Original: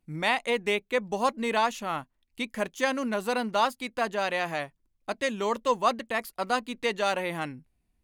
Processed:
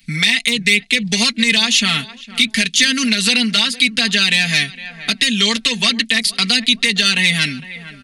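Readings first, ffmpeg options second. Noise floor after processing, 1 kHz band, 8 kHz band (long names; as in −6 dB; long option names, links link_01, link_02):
−42 dBFS, −3.0 dB, +22.5 dB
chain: -filter_complex "[0:a]acompressor=threshold=-27dB:ratio=6,asplit=2[link_01][link_02];[link_02]adelay=458,lowpass=frequency=1200:poles=1,volume=-20dB,asplit=2[link_03][link_04];[link_04]adelay=458,lowpass=frequency=1200:poles=1,volume=0.39,asplit=2[link_05][link_06];[link_06]adelay=458,lowpass=frequency=1200:poles=1,volume=0.39[link_07];[link_03][link_05][link_07]amix=inputs=3:normalize=0[link_08];[link_01][link_08]amix=inputs=2:normalize=0,asoftclip=type=hard:threshold=-24dB,aresample=22050,aresample=44100,equalizer=frequency=125:width_type=o:width=1:gain=12,equalizer=frequency=500:width_type=o:width=1:gain=-7,equalizer=frequency=1000:width_type=o:width=1:gain=-11,equalizer=frequency=2000:width_type=o:width=1:gain=10,equalizer=frequency=4000:width_type=o:width=1:gain=11,equalizer=frequency=8000:width_type=o:width=1:gain=-8,asoftclip=type=tanh:threshold=-14dB,acrossover=split=130|410|3000[link_09][link_10][link_11][link_12];[link_09]acompressor=threshold=-54dB:ratio=4[link_13];[link_10]acompressor=threshold=-39dB:ratio=4[link_14];[link_11]acompressor=threshold=-43dB:ratio=4[link_15];[link_12]acompressor=threshold=-42dB:ratio=4[link_16];[link_13][link_14][link_15][link_16]amix=inputs=4:normalize=0,aecho=1:1:4.4:0.84,crystalizer=i=10:c=0,equalizer=frequency=200:width=0.78:gain=3,alimiter=level_in=12dB:limit=-1dB:release=50:level=0:latency=1,volume=-1dB"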